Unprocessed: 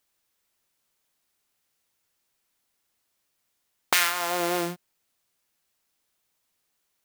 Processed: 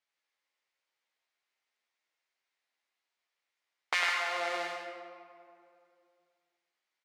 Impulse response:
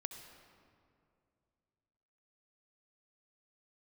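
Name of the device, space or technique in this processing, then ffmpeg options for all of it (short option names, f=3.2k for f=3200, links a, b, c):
station announcement: -filter_complex "[0:a]highpass=490,lowpass=4.6k,equalizer=f=2.1k:t=o:w=0.35:g=6,aecho=1:1:102|157.4:0.562|0.355[a];[1:a]atrim=start_sample=2205[b];[a][b]afir=irnorm=-1:irlink=0,asplit=2[c][d];[d]adelay=13,volume=-6dB[e];[c][e]amix=inputs=2:normalize=0,volume=-6dB"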